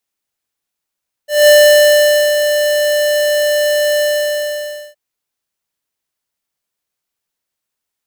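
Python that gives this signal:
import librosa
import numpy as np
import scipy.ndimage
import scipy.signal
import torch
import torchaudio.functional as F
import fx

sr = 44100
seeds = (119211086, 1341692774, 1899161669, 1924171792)

y = fx.adsr_tone(sr, wave='square', hz=593.0, attack_ms=197.0, decay_ms=865.0, sustain_db=-8.0, held_s=2.72, release_ms=947.0, level_db=-5.5)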